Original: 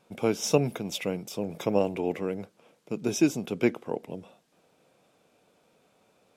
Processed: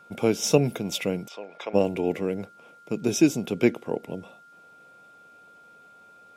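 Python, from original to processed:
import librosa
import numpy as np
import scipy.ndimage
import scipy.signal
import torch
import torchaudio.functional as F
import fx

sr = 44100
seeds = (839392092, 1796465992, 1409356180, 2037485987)

y = x + 10.0 ** (-54.0 / 20.0) * np.sin(2.0 * np.pi * 1400.0 * np.arange(len(x)) / sr)
y = fx.dynamic_eq(y, sr, hz=1100.0, q=1.2, threshold_db=-43.0, ratio=4.0, max_db=-5)
y = fx.bandpass_edges(y, sr, low_hz=760.0, high_hz=3300.0, at=(1.27, 1.73), fade=0.02)
y = y * librosa.db_to_amplitude(4.0)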